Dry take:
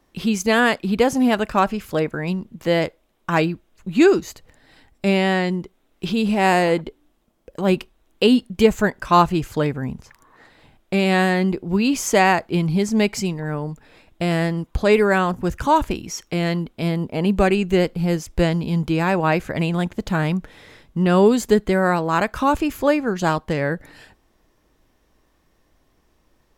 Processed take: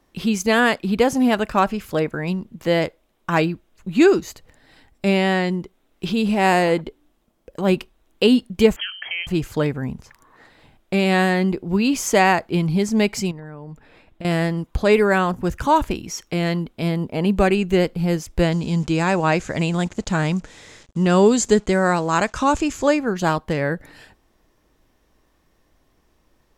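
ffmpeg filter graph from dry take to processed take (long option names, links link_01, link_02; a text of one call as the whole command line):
ffmpeg -i in.wav -filter_complex "[0:a]asettb=1/sr,asplit=3[link_01][link_02][link_03];[link_01]atrim=end=8.764[link_04];[link_02]atrim=start=8.76:end=9.27,asetpts=PTS-STARTPTS,afade=type=in:duration=0.004:curve=qsin,afade=type=out:start_time=0.506:duration=0.004:curve=qsin,bandreject=frequency=192.5:width_type=h:width=4,bandreject=frequency=385:width_type=h:width=4,acompressor=threshold=-25dB:ratio=5:attack=3.2:release=140:knee=1:detection=peak,lowpass=frequency=2800:width_type=q:width=0.5098,lowpass=frequency=2800:width_type=q:width=0.6013,lowpass=frequency=2800:width_type=q:width=0.9,lowpass=frequency=2800:width_type=q:width=2.563,afreqshift=-3300[link_05];[link_03]atrim=start=9.266[link_06];[link_04][link_05]acrossfade=duration=0.004:curve1=hsin:curve2=qsin[link_07];[link_07][link_06]acrossfade=duration=0.004:curve1=qsin:curve2=hsin,asettb=1/sr,asplit=3[link_08][link_09][link_10];[link_08]atrim=end=13.314[link_11];[link_09]atrim=start=13.31:end=14.25,asetpts=PTS-STARTPTS,afade=type=in:duration=0.004:curve=qsin,afade=type=out:start_time=0.936:duration=0.004:curve=qsin,bass=frequency=250:gain=0,treble=frequency=4000:gain=-8,acompressor=threshold=-31dB:ratio=8:attack=3.2:release=140:knee=1:detection=peak[link_12];[link_10]atrim=start=14.246[link_13];[link_11][link_12]acrossfade=duration=0.004:curve1=hsin:curve2=qsin[link_14];[link_14][link_13]acrossfade=duration=0.004:curve1=qsin:curve2=hsin,asettb=1/sr,asplit=3[link_15][link_16][link_17];[link_15]atrim=end=18.524[link_18];[link_16]atrim=start=18.52:end=22.99,asetpts=PTS-STARTPTS,afade=type=in:duration=0.004:curve=qsin,afade=type=out:start_time=4.466:duration=0.004:curve=qsin,acrusher=bits=7:mix=0:aa=0.5,lowpass=frequency=7100:width_type=q:width=3.4[link_19];[link_17]atrim=start=22.986[link_20];[link_18][link_19]acrossfade=duration=0.004:curve1=hsin:curve2=qsin[link_21];[link_21][link_20]acrossfade=duration=0.004:curve1=qsin:curve2=hsin" out.wav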